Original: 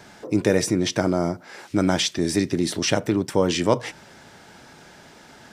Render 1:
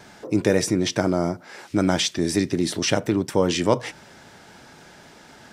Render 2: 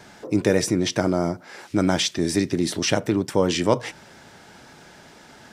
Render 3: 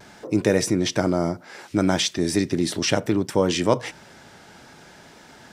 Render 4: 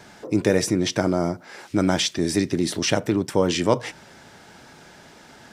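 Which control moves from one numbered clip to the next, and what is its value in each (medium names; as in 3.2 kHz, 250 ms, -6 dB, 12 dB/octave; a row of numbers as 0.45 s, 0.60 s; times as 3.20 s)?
vibrato, rate: 4 Hz, 7.5 Hz, 0.62 Hz, 12 Hz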